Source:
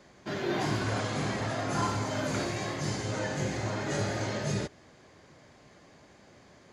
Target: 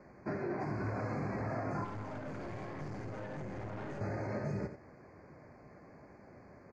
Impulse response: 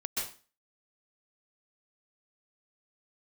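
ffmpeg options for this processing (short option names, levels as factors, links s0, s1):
-filter_complex "[0:a]asuperstop=centerf=3300:order=12:qfactor=1.9,aemphasis=mode=reproduction:type=75kf,aecho=1:1:87:0.237,alimiter=level_in=1.88:limit=0.0631:level=0:latency=1:release=239,volume=0.531,asettb=1/sr,asplit=3[s0][s1][s2];[s0]atrim=end=1.844[s3];[s1]atrim=start=1.84:end=4.01,asetpts=PTS-STARTPTS,afade=t=in:d=0.004:c=qsin,afade=t=out:st=2.166:d=0.004:c=qsin,aeval=exprs='(tanh(100*val(0)+0.55)-tanh(0.55))/100':c=same[s4];[s2]atrim=start=4.006[s5];[s3][s4]acrossfade=d=0.004:c1=hsin:c2=qsin[s6];[s6][s5]acrossfade=d=0.004:c1=qsin:c2=hsin,highshelf=f=3200:g=-11,volume=1.19"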